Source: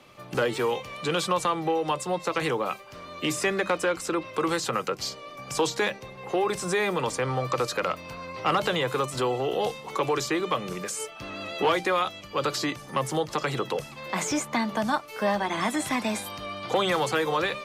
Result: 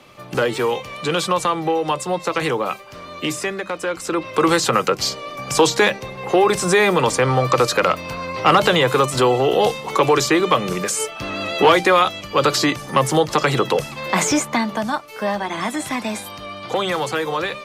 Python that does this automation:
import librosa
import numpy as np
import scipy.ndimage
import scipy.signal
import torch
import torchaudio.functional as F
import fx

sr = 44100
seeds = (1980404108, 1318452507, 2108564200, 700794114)

y = fx.gain(x, sr, db=fx.line((3.16, 6.0), (3.66, -1.5), (4.45, 10.5), (14.22, 10.5), (14.9, 3.0)))